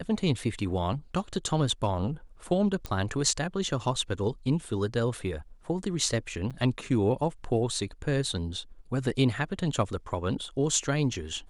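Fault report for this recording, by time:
0:02.86: click −18 dBFS
0:06.50–0:06.51: drop-out 6.6 ms

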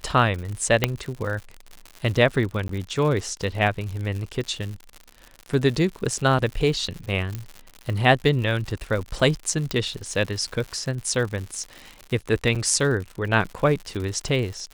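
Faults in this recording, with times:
surface crackle 110 per second −30 dBFS
0:00.84: click −3 dBFS
0:02.68–0:02.69: drop-out
0:07.35: click −16 dBFS
0:09.71: click
0:12.55–0:12.56: drop-out 6.1 ms

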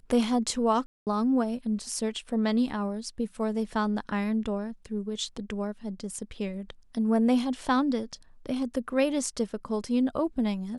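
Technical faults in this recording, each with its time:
0:00.86–0:01.07: drop-out 208 ms

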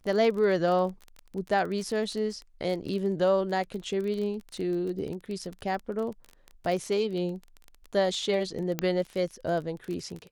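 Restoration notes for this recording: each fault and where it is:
surface crackle 22 per second −33 dBFS
0:08.79: click −12 dBFS

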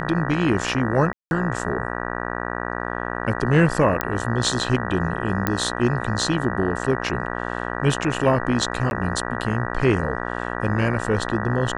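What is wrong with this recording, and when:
mains buzz 60 Hz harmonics 32 −28 dBFS
0:01.13–0:01.31: drop-out 181 ms
0:04.01: click −6 dBFS
0:05.47: click −6 dBFS
0:08.90–0:08.91: drop-out 11 ms

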